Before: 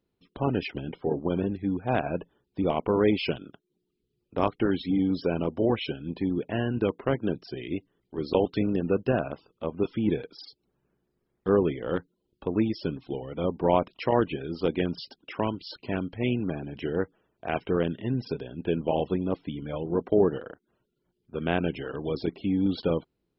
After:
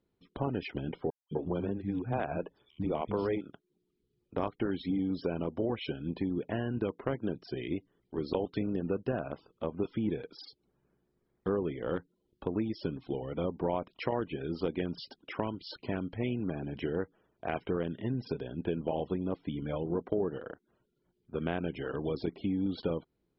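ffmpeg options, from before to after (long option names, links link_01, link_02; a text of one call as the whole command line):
ffmpeg -i in.wav -filter_complex "[0:a]asettb=1/sr,asplit=3[link_01][link_02][link_03];[link_01]atrim=end=1.104[link_04];[link_02]atrim=start=1.1:end=3.41,asetpts=PTS-STARTPTS,afade=type=in:duration=0.004:curve=qsin,afade=type=out:start_time=2.306:duration=0.004:curve=qsin,acrossover=split=230|4700[link_05][link_06][link_07];[link_05]adelay=210[link_08];[link_06]adelay=250[link_09];[link_08][link_09][link_07]amix=inputs=3:normalize=0,atrim=end_sample=101871[link_10];[link_03]atrim=start=3.406[link_11];[link_04][link_10]acrossfade=duration=0.004:curve1=hsin:curve2=qsin[link_12];[link_12][link_11]acrossfade=duration=0.004:curve1=qsin:curve2=hsin,acompressor=threshold=-30dB:ratio=3,lowpass=frequency=4000:poles=1,bandreject=frequency=2700:width=14" out.wav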